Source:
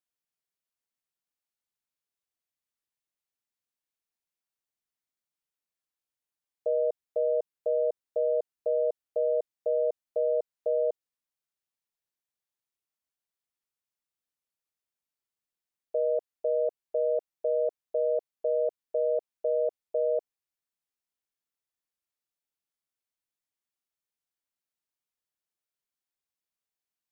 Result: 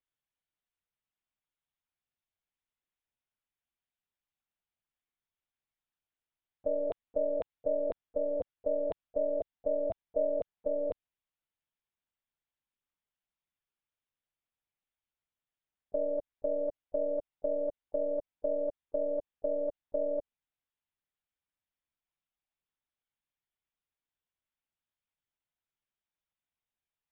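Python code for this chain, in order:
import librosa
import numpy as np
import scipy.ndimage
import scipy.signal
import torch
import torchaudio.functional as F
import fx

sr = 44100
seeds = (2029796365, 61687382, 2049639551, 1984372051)

y = fx.lpc_monotone(x, sr, seeds[0], pitch_hz=290.0, order=10)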